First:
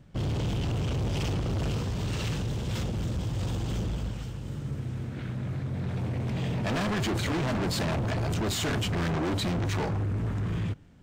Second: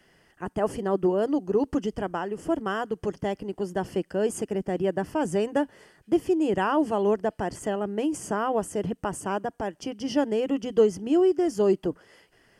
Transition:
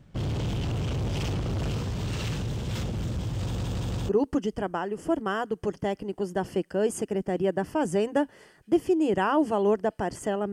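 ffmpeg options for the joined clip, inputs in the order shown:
-filter_complex "[0:a]apad=whole_dur=10.52,atrim=end=10.52,asplit=4[a][b][c][d];[a]atrim=end=3.582[e];[b]atrim=start=3.408:end=3.582[f];[c]atrim=start=3.408:end=3.582[g];[d]atrim=start=3.408:end=3.582[h];[1:a]atrim=start=1.488:end=7.92[i];[e][f]acrossfade=d=0.004:c1=hsin:c2=hsin[j];[j][g]acrossfade=d=0.004:c1=hsin:c2=hsin[k];[k][h]acrossfade=d=0.004:c1=hsin:c2=hsin[l];[l][i]acrossfade=d=0.004:c1=hsin:c2=hsin"

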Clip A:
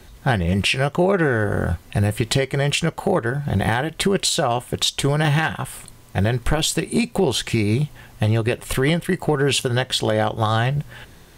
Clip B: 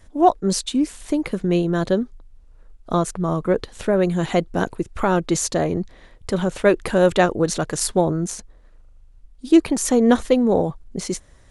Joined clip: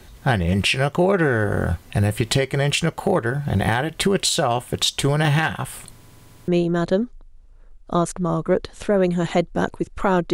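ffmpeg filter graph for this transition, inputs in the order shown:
-filter_complex "[0:a]apad=whole_dur=10.33,atrim=end=10.33,asplit=6[a][b][c][d][e][f];[a]atrim=end=6.032[g];[b]atrim=start=5.938:end=6.032[h];[c]atrim=start=5.938:end=6.032[i];[d]atrim=start=5.938:end=6.032[j];[e]atrim=start=5.938:end=6.032[k];[f]atrim=start=5.938:end=6.032[l];[1:a]atrim=start=1.468:end=5.32[m];[g][h]acrossfade=d=0.004:c1=hsin:c2=hsin[n];[n][i]acrossfade=d=0.004:c1=hsin:c2=hsin[o];[o][j]acrossfade=d=0.004:c1=hsin:c2=hsin[p];[p][k]acrossfade=d=0.004:c1=hsin:c2=hsin[q];[q][l]acrossfade=d=0.004:c1=hsin:c2=hsin[r];[r][m]acrossfade=d=0.004:c1=hsin:c2=hsin"

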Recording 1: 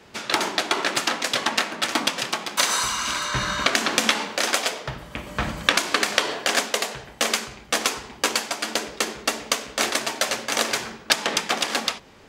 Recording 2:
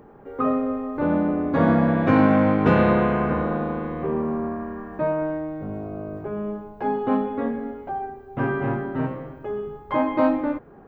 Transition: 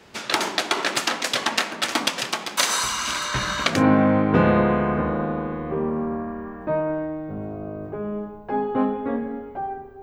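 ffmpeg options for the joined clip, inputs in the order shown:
-filter_complex "[0:a]apad=whole_dur=10.02,atrim=end=10.02,atrim=end=3.84,asetpts=PTS-STARTPTS[a];[1:a]atrim=start=1.96:end=8.34,asetpts=PTS-STARTPTS[b];[a][b]acrossfade=d=0.2:c1=tri:c2=tri"

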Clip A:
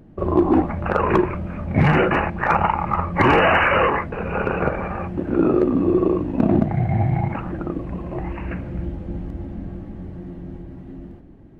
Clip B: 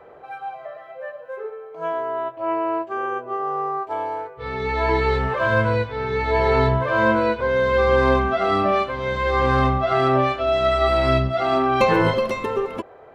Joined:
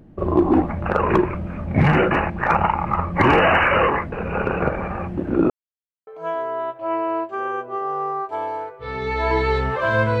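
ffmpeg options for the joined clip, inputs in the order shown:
-filter_complex "[0:a]apad=whole_dur=10.2,atrim=end=10.2,asplit=2[a][b];[a]atrim=end=5.5,asetpts=PTS-STARTPTS,afade=t=out:st=5.496:d=0.004:c=hsin[c];[b]atrim=start=5.5:end=6.07,asetpts=PTS-STARTPTS,volume=0[d];[1:a]atrim=start=1.65:end=5.78,asetpts=PTS-STARTPTS,afade=t=in:d=0.004:c=hsin[e];[c][d][e]concat=n=3:v=0:a=1"

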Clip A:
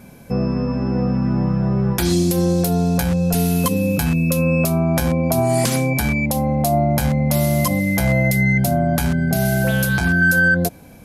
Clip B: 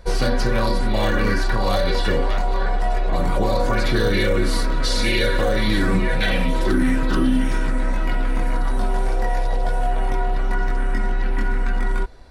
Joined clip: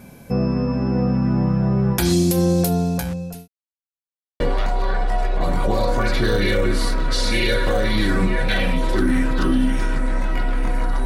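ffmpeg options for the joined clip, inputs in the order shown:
-filter_complex "[0:a]apad=whole_dur=11.05,atrim=end=11.05,asplit=2[a][b];[a]atrim=end=3.48,asetpts=PTS-STARTPTS,afade=t=out:st=2.62:d=0.86[c];[b]atrim=start=3.48:end=4.4,asetpts=PTS-STARTPTS,volume=0[d];[1:a]atrim=start=2.12:end=8.77,asetpts=PTS-STARTPTS,afade=t=in:d=0.004:c=hsin[e];[c][d][e]concat=n=3:v=0:a=1"

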